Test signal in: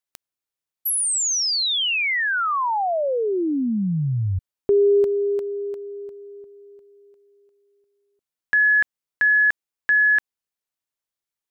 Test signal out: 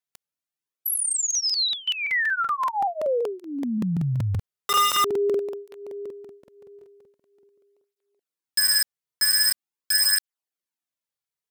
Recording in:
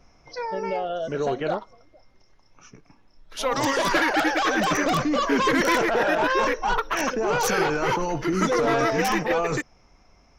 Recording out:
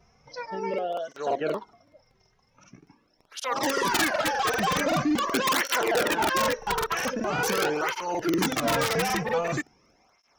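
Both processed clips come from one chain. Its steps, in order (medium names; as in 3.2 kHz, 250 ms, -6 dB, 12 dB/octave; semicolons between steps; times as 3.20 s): integer overflow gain 14 dB; crackling interface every 0.19 s, samples 2048, repeat, from 0.69 s; cancelling through-zero flanger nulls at 0.44 Hz, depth 3.7 ms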